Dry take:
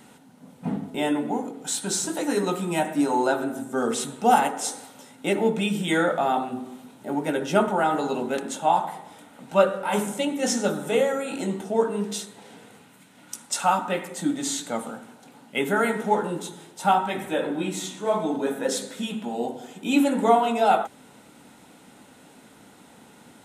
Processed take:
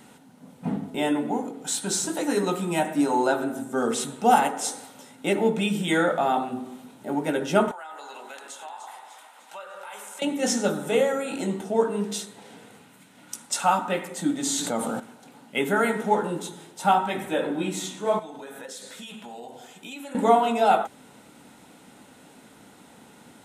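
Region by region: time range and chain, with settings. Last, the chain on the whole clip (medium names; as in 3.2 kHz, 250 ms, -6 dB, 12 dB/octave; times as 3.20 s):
7.71–10.22 s: high-pass 950 Hz + compression, threshold -37 dBFS + two-band feedback delay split 1 kHz, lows 201 ms, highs 300 ms, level -9.5 dB
14.43–15.00 s: peaking EQ 2.1 kHz -4 dB 1.4 oct + level flattener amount 70%
18.19–20.15 s: peaking EQ 260 Hz -11 dB 2.2 oct + compression, threshold -36 dBFS
whole clip: none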